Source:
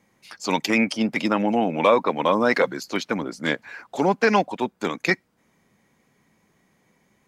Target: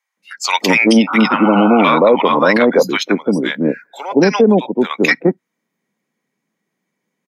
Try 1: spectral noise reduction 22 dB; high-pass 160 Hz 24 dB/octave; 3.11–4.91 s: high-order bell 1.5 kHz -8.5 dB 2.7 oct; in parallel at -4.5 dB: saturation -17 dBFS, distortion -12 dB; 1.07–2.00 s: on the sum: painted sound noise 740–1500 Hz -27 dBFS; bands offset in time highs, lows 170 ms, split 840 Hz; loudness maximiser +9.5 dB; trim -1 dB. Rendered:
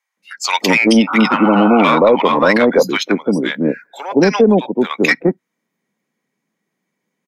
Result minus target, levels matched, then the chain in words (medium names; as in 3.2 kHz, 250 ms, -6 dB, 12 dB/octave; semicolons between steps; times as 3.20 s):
saturation: distortion +13 dB
spectral noise reduction 22 dB; high-pass 160 Hz 24 dB/octave; 3.11–4.91 s: high-order bell 1.5 kHz -8.5 dB 2.7 oct; in parallel at -4.5 dB: saturation -7 dBFS, distortion -24 dB; 1.07–2.00 s: on the sum: painted sound noise 740–1500 Hz -27 dBFS; bands offset in time highs, lows 170 ms, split 840 Hz; loudness maximiser +9.5 dB; trim -1 dB